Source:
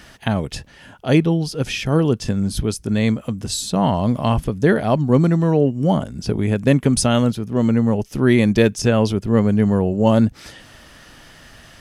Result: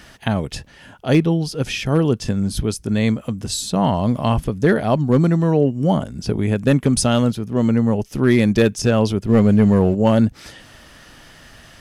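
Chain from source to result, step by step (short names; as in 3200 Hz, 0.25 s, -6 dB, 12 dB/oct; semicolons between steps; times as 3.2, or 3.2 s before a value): 9.29–9.95 sample leveller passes 1; hard clip -6 dBFS, distortion -25 dB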